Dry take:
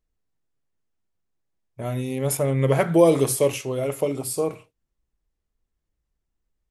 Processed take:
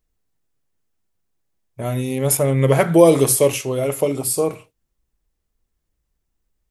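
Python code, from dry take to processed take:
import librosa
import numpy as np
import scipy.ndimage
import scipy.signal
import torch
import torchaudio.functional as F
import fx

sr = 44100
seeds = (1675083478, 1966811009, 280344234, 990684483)

y = fx.high_shelf(x, sr, hz=7500.0, db=6.0)
y = y * 10.0 ** (4.5 / 20.0)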